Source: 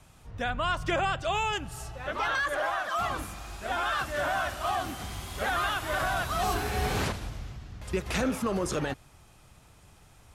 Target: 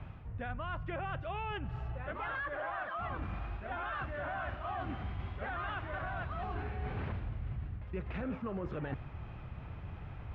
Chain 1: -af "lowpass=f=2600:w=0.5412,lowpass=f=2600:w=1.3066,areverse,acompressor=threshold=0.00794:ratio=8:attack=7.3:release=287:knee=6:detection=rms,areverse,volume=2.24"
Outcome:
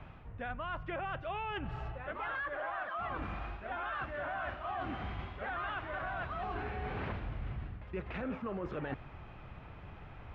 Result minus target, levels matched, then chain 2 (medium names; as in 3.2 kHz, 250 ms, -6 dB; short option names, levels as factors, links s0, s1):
125 Hz band -4.5 dB
-af "lowpass=f=2600:w=0.5412,lowpass=f=2600:w=1.3066,equalizer=f=88:t=o:w=2.3:g=8.5,areverse,acompressor=threshold=0.00794:ratio=8:attack=7.3:release=287:knee=6:detection=rms,areverse,volume=2.24"